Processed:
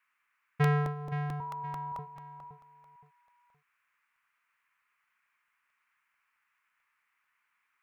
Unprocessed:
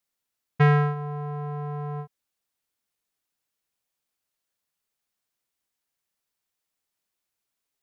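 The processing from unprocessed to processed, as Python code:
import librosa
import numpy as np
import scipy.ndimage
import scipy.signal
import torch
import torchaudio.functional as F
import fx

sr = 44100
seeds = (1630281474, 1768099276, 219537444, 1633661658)

p1 = fx.sine_speech(x, sr, at=(1.4, 1.99))
p2 = fx.dmg_noise_band(p1, sr, seeds[0], low_hz=1000.0, high_hz=2500.0, level_db=-71.0)
p3 = p2 + fx.echo_feedback(p2, sr, ms=519, feedback_pct=31, wet_db=-10, dry=0)
p4 = fx.buffer_crackle(p3, sr, first_s=0.42, period_s=0.22, block=64, kind='repeat')
y = p4 * 10.0 ** (-7.5 / 20.0)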